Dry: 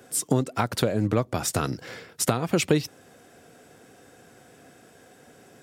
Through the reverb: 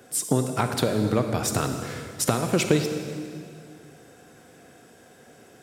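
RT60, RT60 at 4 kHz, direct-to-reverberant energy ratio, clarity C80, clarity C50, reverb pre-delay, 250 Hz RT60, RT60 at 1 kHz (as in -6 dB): 2.2 s, 2.1 s, 6.0 dB, 7.5 dB, 6.5 dB, 32 ms, 2.6 s, 2.1 s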